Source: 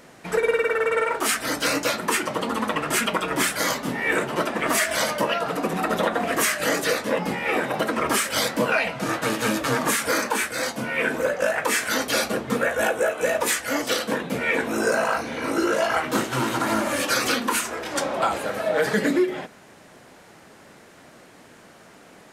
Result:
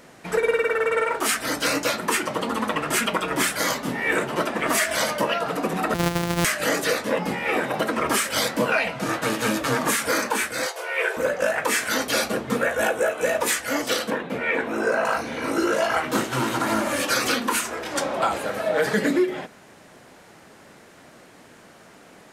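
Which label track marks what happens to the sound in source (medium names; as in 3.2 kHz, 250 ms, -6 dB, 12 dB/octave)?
5.940000	6.450000	sorted samples in blocks of 256 samples
10.660000	11.170000	brick-wall FIR high-pass 350 Hz
14.100000	15.050000	tone controls bass -5 dB, treble -12 dB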